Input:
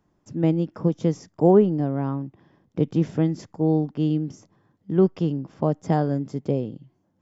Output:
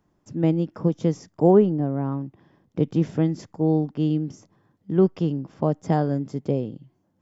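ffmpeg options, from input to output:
-filter_complex "[0:a]asettb=1/sr,asplit=3[s0][s1][s2];[s0]atrim=end=1.724[s3];[s1]atrim=start=1.72:end=2.12,asetpts=PTS-STARTPTS,afade=t=in:d=0.004:c=qsin,afade=t=out:st=0.396:d=0.004:c=qsin,lowpass=f=1500:p=1[s4];[s2]atrim=start=2.116[s5];[s3][s4]acrossfade=d=0.004:c1=hsin:c2=qsin[s6];[s6][s5]acrossfade=d=0.004:c1=qsin:c2=hsin"

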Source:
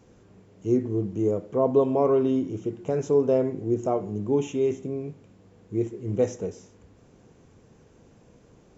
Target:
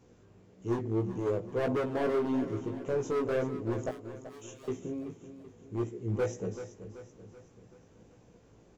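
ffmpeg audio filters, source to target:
-filter_complex "[0:a]asoftclip=type=hard:threshold=0.0794,asettb=1/sr,asplit=3[s0][s1][s2];[s0]atrim=end=3.894[s3];[s1]atrim=start=3.89:end=4.68,asetpts=PTS-STARTPTS,afade=t=in:d=0.004:c=qsin,afade=t=out:st=0.786:d=0.004:c=qsin,aderivative[s4];[s2]atrim=start=4.676[s5];[s3][s4]acrossfade=d=0.004:c1=hsin:c2=qsin[s6];[s6][s5]acrossfade=d=0.004:c1=qsin:c2=hsin,flanger=delay=16:depth=2.4:speed=1.7,asplit=2[s7][s8];[s8]aecho=0:1:382|764|1146|1528|1910:0.251|0.123|0.0603|0.0296|0.0145[s9];[s7][s9]amix=inputs=2:normalize=0,volume=0.841"

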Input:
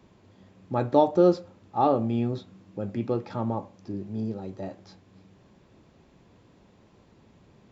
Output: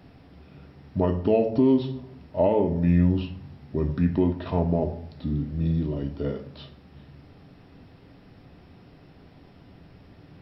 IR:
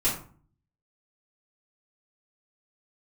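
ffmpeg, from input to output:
-filter_complex "[0:a]asplit=2[s0][s1];[1:a]atrim=start_sample=2205,highshelf=f=5100:g=10.5[s2];[s1][s2]afir=irnorm=-1:irlink=0,volume=0.119[s3];[s0][s3]amix=inputs=2:normalize=0,asetrate=32667,aresample=44100,alimiter=limit=0.141:level=0:latency=1:release=367,volume=1.88"

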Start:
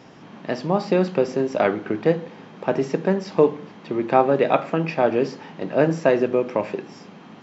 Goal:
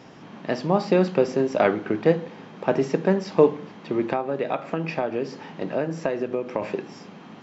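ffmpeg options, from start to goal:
-filter_complex "[0:a]asettb=1/sr,asplit=3[s0][s1][s2];[s0]atrim=end=4.114[s3];[s1]atrim=start=4.11:end=6.62,asetpts=PTS-STARTPTS,afade=t=in:d=0.004:c=qsin,afade=t=out:st=2.506:d=0.004:c=qsin,acompressor=threshold=0.0794:ratio=6[s4];[s2]atrim=start=6.616[s5];[s3][s4]acrossfade=d=0.004:c1=hsin:c2=qsin[s6];[s6][s5]acrossfade=d=0.004:c1=qsin:c2=hsin"

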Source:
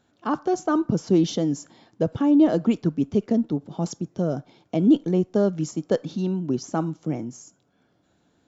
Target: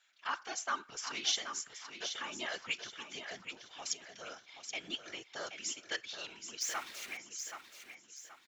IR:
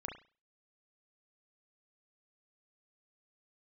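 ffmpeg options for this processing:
-filter_complex "[0:a]asettb=1/sr,asplit=3[s0][s1][s2];[s0]atrim=end=6.614[s3];[s1]atrim=start=6.61:end=7.17,asetpts=PTS-STARTPTS,afade=t=in:d=0.004:c=qsin,afade=t=out:st=0.556:d=0.004:c=qsin,aeval=exprs='val(0)+0.5*0.0126*sgn(val(0))':c=same[s4];[s2]atrim=start=7.166[s5];[s3][s4]acrossfade=d=0.004:c1=hsin:c2=qsin[s6];[s6][s5]acrossfade=d=0.004:c1=qsin:c2=hsin,highpass=f=2100:t=q:w=2.2,aeval=exprs='0.106*(cos(1*acos(clip(val(0)/0.106,-1,1)))-cos(1*PI/2))+0.00119*(cos(3*acos(clip(val(0)/0.106,-1,1)))-cos(3*PI/2))':c=same,afftfilt=real='hypot(re,im)*cos(2*PI*random(0))':imag='hypot(re,im)*sin(2*PI*random(1))':win_size=512:overlap=0.75,asplit=2[s7][s8];[s8]aecho=0:1:777|1554|2331|3108:0.376|0.132|0.046|0.0161[s9];[s7][s9]amix=inputs=2:normalize=0,volume=2"

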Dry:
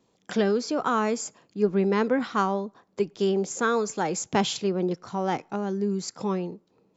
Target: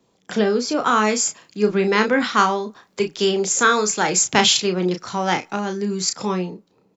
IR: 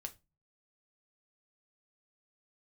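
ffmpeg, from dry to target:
-filter_complex "[0:a]acrossover=split=180|1400[s0][s1][s2];[s2]dynaudnorm=f=150:g=11:m=3.35[s3];[s0][s1][s3]amix=inputs=3:normalize=0,asplit=2[s4][s5];[s5]adelay=33,volume=0.447[s6];[s4][s6]amix=inputs=2:normalize=0,volume=1.5"

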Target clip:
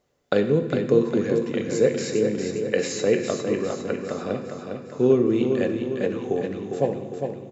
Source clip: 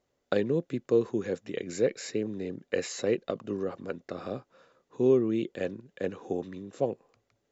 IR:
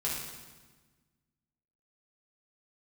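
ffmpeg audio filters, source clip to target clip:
-filter_complex "[0:a]aecho=1:1:405|810|1215|1620|2025|2430|2835:0.501|0.266|0.141|0.0746|0.0395|0.021|0.0111,asplit=2[s0][s1];[1:a]atrim=start_sample=2205[s2];[s1][s2]afir=irnorm=-1:irlink=0,volume=0.335[s3];[s0][s3]amix=inputs=2:normalize=0,volume=1.5"

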